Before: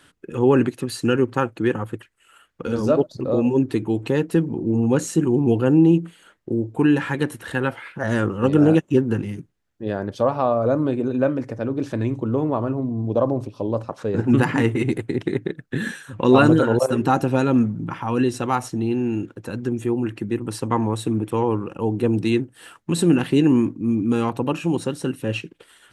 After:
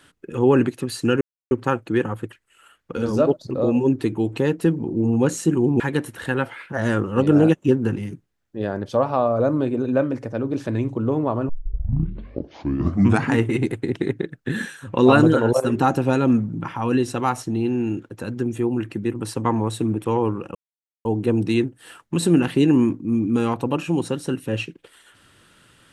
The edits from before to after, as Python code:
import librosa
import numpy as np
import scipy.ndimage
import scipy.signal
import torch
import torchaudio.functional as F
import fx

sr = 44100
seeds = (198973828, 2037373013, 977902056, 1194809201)

y = fx.edit(x, sr, fx.insert_silence(at_s=1.21, length_s=0.3),
    fx.cut(start_s=5.5, length_s=1.56),
    fx.tape_start(start_s=12.75, length_s=1.87),
    fx.insert_silence(at_s=21.81, length_s=0.5), tone=tone)